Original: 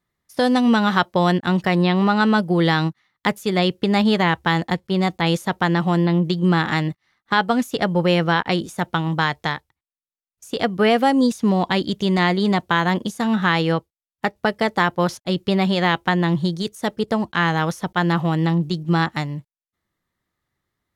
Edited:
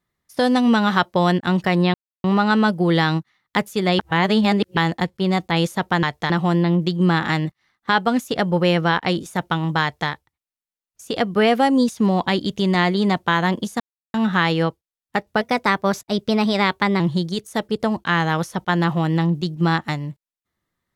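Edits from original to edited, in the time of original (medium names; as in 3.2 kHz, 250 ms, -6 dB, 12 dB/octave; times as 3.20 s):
1.94 s: insert silence 0.30 s
3.69–4.47 s: reverse
9.25–9.52 s: copy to 5.73 s
13.23 s: insert silence 0.34 s
14.50–16.28 s: speed 112%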